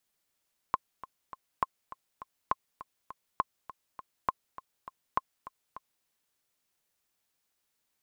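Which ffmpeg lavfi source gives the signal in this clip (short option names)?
-f lavfi -i "aevalsrc='pow(10,(-12.5-16.5*gte(mod(t,3*60/203),60/203))/20)*sin(2*PI*1060*mod(t,60/203))*exp(-6.91*mod(t,60/203)/0.03)':d=5.32:s=44100"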